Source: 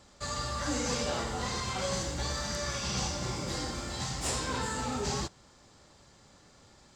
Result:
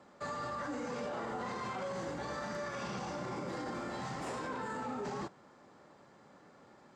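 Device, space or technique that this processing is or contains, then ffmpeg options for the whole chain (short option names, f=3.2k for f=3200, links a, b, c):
DJ mixer with the lows and highs turned down: -filter_complex "[0:a]acrossover=split=150 2100:gain=0.0631 1 0.141[a][b][c];[a][b][c]amix=inputs=3:normalize=0,alimiter=level_in=10dB:limit=-24dB:level=0:latency=1:release=39,volume=-10dB,volume=2.5dB"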